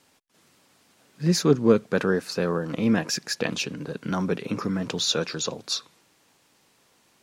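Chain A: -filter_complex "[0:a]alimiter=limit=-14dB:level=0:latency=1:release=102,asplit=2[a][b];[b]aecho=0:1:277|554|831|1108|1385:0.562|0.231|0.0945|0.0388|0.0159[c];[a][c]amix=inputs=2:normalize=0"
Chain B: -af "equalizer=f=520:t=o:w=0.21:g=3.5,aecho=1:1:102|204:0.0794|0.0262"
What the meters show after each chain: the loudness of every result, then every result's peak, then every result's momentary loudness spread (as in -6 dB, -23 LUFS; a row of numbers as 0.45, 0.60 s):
-26.0, -25.0 LUFS; -10.0, -6.0 dBFS; 9, 10 LU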